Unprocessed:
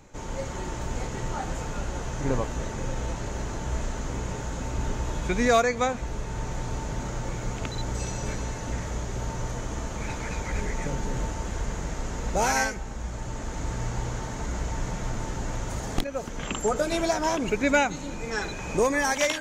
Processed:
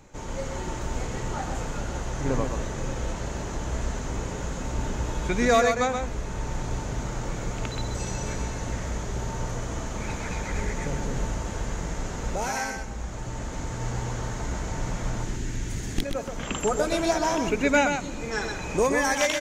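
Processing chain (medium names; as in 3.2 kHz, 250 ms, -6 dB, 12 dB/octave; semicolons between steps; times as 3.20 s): 12.33–13.81 s: compression, threshold -26 dBFS, peak gain reduction 6.5 dB; 15.23–16.02 s: high-order bell 810 Hz -11.5 dB; delay 127 ms -6 dB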